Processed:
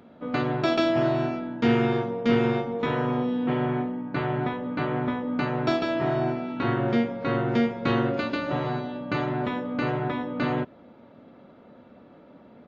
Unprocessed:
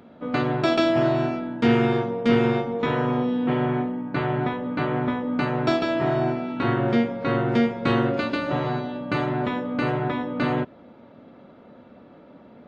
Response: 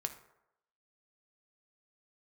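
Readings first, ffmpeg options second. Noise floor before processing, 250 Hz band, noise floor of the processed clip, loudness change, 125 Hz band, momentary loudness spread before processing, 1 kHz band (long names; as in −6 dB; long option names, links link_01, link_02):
−49 dBFS, −2.5 dB, −52 dBFS, −2.5 dB, −2.5 dB, 6 LU, −2.5 dB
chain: -af "aresample=16000,aresample=44100,volume=-2.5dB"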